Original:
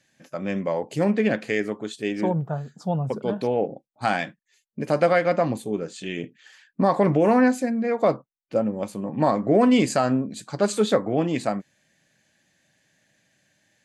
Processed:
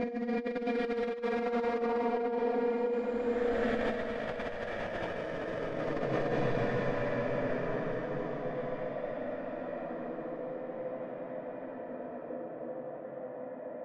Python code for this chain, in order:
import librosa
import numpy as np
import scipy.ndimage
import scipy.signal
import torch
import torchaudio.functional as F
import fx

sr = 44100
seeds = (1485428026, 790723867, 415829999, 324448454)

p1 = 10.0 ** (-17.0 / 20.0) * (np.abs((x / 10.0 ** (-17.0 / 20.0) + 3.0) % 4.0 - 2.0) - 1.0)
p2 = fx.high_shelf(p1, sr, hz=3100.0, db=9.0)
p3 = p2 + fx.echo_tape(p2, sr, ms=100, feedback_pct=84, wet_db=-10, lp_hz=1600.0, drive_db=11.0, wow_cents=40, dry=0)
p4 = fx.rev_schroeder(p3, sr, rt60_s=0.35, comb_ms=31, drr_db=7.0)
p5 = (np.mod(10.0 ** (14.0 / 20.0) * p4 + 1.0, 2.0) - 1.0) / 10.0 ** (14.0 / 20.0)
p6 = p4 + F.gain(torch.from_numpy(p5), -7.0).numpy()
p7 = fx.paulstretch(p6, sr, seeds[0], factor=23.0, window_s=0.1, from_s=7.86)
p8 = fx.over_compress(p7, sr, threshold_db=-21.0, ratio=-0.5)
p9 = fx.spacing_loss(p8, sr, db_at_10k=27)
y = F.gain(torch.from_numpy(p9), -8.5).numpy()